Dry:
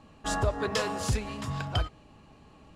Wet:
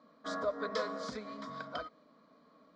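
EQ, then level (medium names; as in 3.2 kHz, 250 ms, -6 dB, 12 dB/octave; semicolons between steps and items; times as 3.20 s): cabinet simulation 350–4300 Hz, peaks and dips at 550 Hz -4 dB, 1.2 kHz -3 dB, 1.7 kHz -8 dB; static phaser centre 550 Hz, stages 8; +1.0 dB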